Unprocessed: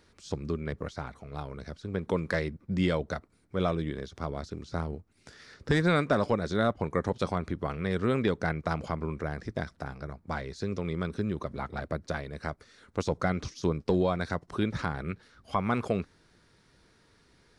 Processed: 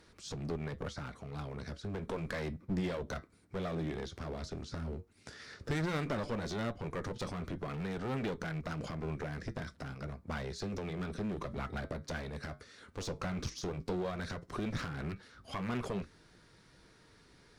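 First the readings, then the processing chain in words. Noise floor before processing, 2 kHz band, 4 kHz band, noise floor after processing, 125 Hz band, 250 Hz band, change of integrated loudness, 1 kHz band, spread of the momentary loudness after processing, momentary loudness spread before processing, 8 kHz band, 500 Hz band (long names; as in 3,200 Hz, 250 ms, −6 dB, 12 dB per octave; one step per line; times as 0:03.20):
−64 dBFS, −7.5 dB, −4.5 dB, −63 dBFS, −6.5 dB, −7.5 dB, −8.0 dB, −9.0 dB, 8 LU, 12 LU, 0.0 dB, −9.0 dB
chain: brickwall limiter −23 dBFS, peak gain reduction 7.5 dB
flanger 0.12 Hz, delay 6.1 ms, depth 4.5 ms, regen −73%
dynamic equaliser 830 Hz, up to −6 dB, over −57 dBFS, Q 2.4
asymmetric clip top −44 dBFS
level +5.5 dB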